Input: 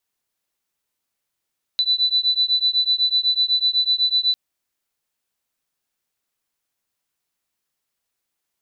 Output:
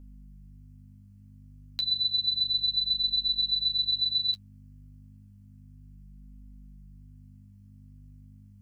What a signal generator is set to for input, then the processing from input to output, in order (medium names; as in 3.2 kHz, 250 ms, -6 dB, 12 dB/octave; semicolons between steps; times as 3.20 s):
beating tones 3.98 kHz, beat 8 Hz, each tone -19.5 dBFS 2.55 s
peaking EQ 3.7 kHz -9.5 dB 0.2 oct; hum 50 Hz, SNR 16 dB; flange 0.31 Hz, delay 3.8 ms, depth 9 ms, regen -23%